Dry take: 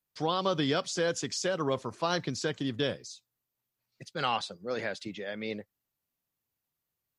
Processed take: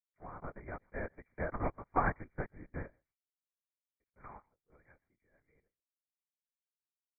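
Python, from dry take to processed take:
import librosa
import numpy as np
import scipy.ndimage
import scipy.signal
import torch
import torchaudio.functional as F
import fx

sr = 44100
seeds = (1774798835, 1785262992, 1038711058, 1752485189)

y = fx.doppler_pass(x, sr, speed_mps=16, closest_m=12.0, pass_at_s=1.95)
y = fx.highpass(y, sr, hz=470.0, slope=6)
y = fx.power_curve(y, sr, exponent=1.4)
y = y + 10.0 ** (-23.0 / 20.0) * np.pad(y, (int(131 * sr / 1000.0), 0))[:len(y)]
y = fx.lpc_vocoder(y, sr, seeds[0], excitation='whisper', order=8)
y = fx.brickwall_lowpass(y, sr, high_hz=2400.0)
y = fx.upward_expand(y, sr, threshold_db=-58.0, expansion=1.5)
y = F.gain(torch.from_numpy(y), 6.0).numpy()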